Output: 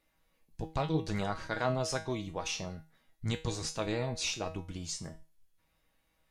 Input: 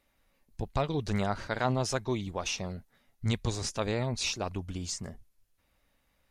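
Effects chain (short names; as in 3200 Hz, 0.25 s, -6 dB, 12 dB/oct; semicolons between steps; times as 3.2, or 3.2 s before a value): resonator 160 Hz, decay 0.32 s, harmonics all, mix 80%; gain +7 dB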